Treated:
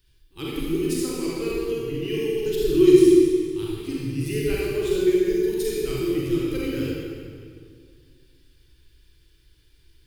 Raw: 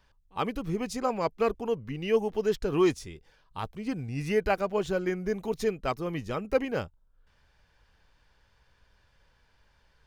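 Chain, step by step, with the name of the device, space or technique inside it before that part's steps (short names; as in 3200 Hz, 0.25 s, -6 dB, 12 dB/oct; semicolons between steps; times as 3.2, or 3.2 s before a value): EQ curve 150 Hz 0 dB, 210 Hz -19 dB, 330 Hz +11 dB, 640 Hz -26 dB, 3600 Hz +3 dB, 6100 Hz -1 dB, 10000 Hz +11 dB; stairwell (reverb RT60 2.1 s, pre-delay 34 ms, DRR -6 dB)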